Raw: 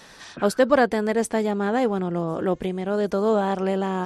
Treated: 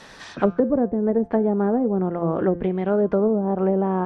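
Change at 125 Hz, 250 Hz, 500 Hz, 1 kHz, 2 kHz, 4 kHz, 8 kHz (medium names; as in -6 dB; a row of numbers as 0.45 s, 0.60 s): +3.5 dB, +3.5 dB, +1.0 dB, -2.5 dB, -9.5 dB, under -10 dB, under -15 dB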